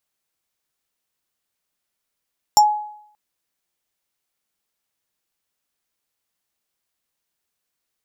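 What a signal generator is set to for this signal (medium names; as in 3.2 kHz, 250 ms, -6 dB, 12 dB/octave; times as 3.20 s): FM tone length 0.58 s, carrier 842 Hz, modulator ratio 7.53, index 1.2, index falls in 0.11 s exponential, decay 0.68 s, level -6 dB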